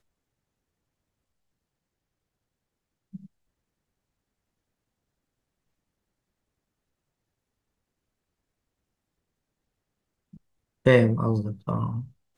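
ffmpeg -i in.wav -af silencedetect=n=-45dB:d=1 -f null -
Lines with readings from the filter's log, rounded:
silence_start: 0.00
silence_end: 3.13 | silence_duration: 3.13
silence_start: 3.26
silence_end: 10.34 | silence_duration: 7.08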